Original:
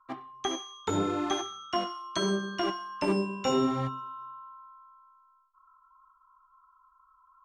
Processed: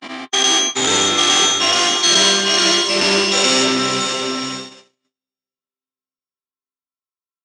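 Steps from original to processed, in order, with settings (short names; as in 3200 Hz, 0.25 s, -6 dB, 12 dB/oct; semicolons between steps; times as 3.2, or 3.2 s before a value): spectral dilation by 0.24 s; soft clip -23.5 dBFS, distortion -11 dB; careless resampling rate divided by 2×, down filtered, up zero stuff; high shelf 5200 Hz +11 dB; doubler 12 ms -9 dB; on a send: diffused feedback echo 0.541 s, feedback 44%, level -5.5 dB; on the sum: gate -21 dBFS, range -59 dB; downsampling 22050 Hz; weighting filter D; gain +7 dB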